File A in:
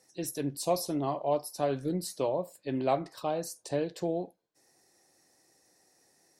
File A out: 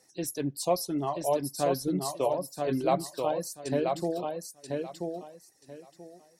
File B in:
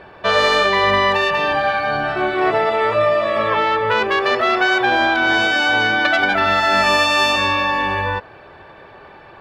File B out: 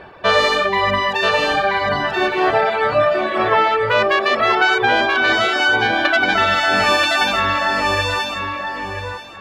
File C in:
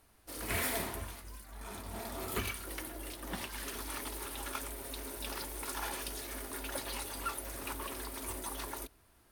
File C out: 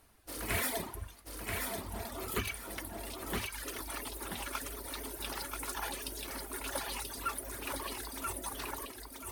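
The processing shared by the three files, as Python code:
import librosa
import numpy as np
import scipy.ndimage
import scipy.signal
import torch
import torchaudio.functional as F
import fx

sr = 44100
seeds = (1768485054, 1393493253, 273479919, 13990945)

p1 = fx.dereverb_blind(x, sr, rt60_s=1.8)
p2 = p1 + fx.echo_feedback(p1, sr, ms=983, feedback_pct=21, wet_db=-4, dry=0)
y = p2 * librosa.db_to_amplitude(2.0)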